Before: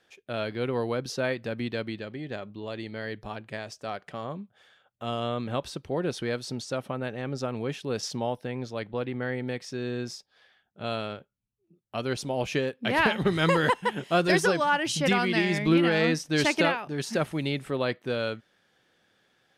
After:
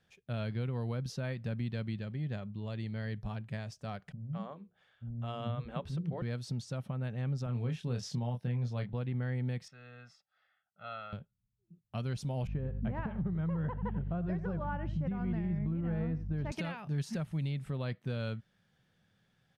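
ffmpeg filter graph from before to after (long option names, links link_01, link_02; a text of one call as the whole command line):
ffmpeg -i in.wav -filter_complex "[0:a]asettb=1/sr,asplit=3[link_01][link_02][link_03];[link_01]atrim=end=4.124[link_04];[link_02]atrim=start=4.12:end=6.22,asetpts=PTS-STARTPTS,afade=type=in:duration=0.004:curve=qsin,afade=type=out:start_time=2.096:duration=0.004:curve=qsin,bass=frequency=250:gain=-2,treble=frequency=4000:gain=-9,bandreject=frequency=60:width_type=h:width=6,bandreject=frequency=120:width_type=h:width=6,bandreject=frequency=180:width_type=h:width=6,bandreject=frequency=240:width_type=h:width=6,bandreject=frequency=300:width_type=h:width=6,bandreject=frequency=360:width_type=h:width=6,bandreject=frequency=420:width_type=h:width=6,bandreject=frequency=480:width_type=h:width=6,acrossover=split=260[link_05][link_06];[link_06]adelay=210[link_07];[link_05][link_07]amix=inputs=2:normalize=0,atrim=end_sample=92610[link_08];[link_03]atrim=start=6.216[link_09];[link_04][link_08]acrossfade=duration=0.004:curve1=hsin:curve2=qsin[link_10];[link_10][link_09]acrossfade=duration=0.004:curve1=qsin:curve2=hsin,asettb=1/sr,asplit=3[link_11][link_12][link_13];[link_11]atrim=end=7.464[link_14];[link_12]atrim=start=7.46:end=8.93,asetpts=PTS-STARTPTS,afade=type=in:duration=0.004:curve=qsin,afade=type=out:start_time=1.466:duration=0.004:curve=qsin,highpass=frequency=46:width=0.5412,highpass=frequency=46:width=1.3066,highshelf=frequency=9300:gain=-4.5,asplit=2[link_15][link_16];[link_16]adelay=25,volume=-6dB[link_17];[link_15][link_17]amix=inputs=2:normalize=0,atrim=end_sample=64827[link_18];[link_13]atrim=start=8.926[link_19];[link_14][link_18]acrossfade=duration=0.004:curve1=hsin:curve2=qsin[link_20];[link_20][link_19]acrossfade=duration=0.004:curve1=qsin:curve2=hsin,asettb=1/sr,asplit=3[link_21][link_22][link_23];[link_21]atrim=end=9.684[link_24];[link_22]atrim=start=9.68:end=11.13,asetpts=PTS-STARTPTS,afade=type=in:duration=0.004:curve=qsin,afade=type=out:start_time=1.446:duration=0.004:curve=qsin,bandpass=frequency=1400:width_type=q:width=1.7,aecho=1:1:1.5:0.84,atrim=end_sample=63945[link_25];[link_23]atrim=start=11.126[link_26];[link_24][link_25]acrossfade=duration=0.004:curve1=hsin:curve2=qsin[link_27];[link_27][link_26]acrossfade=duration=0.004:curve1=qsin:curve2=hsin,asettb=1/sr,asplit=3[link_28][link_29][link_30];[link_28]atrim=end=12.474[link_31];[link_29]atrim=start=12.47:end=16.52,asetpts=PTS-STARTPTS,afade=type=in:duration=0.004:curve=qsin,afade=type=out:start_time=4.046:duration=0.004:curve=qsin,lowpass=1100,aeval=exprs='val(0)+0.0112*(sin(2*PI*50*n/s)+sin(2*PI*2*50*n/s)/2+sin(2*PI*3*50*n/s)/3+sin(2*PI*4*50*n/s)/4+sin(2*PI*5*50*n/s)/5)':channel_layout=same,aecho=1:1:90:0.168,atrim=end_sample=178605[link_32];[link_30]atrim=start=16.516[link_33];[link_31][link_32]acrossfade=duration=0.004:curve1=hsin:curve2=qsin[link_34];[link_34][link_33]acrossfade=duration=0.004:curve1=qsin:curve2=hsin,firequalizer=gain_entry='entry(170,0);entry(300,-17);entry(620,-15)':delay=0.05:min_phase=1,acompressor=threshold=-34dB:ratio=6,alimiter=level_in=8dB:limit=-24dB:level=0:latency=1:release=321,volume=-8dB,volume=6dB" out.wav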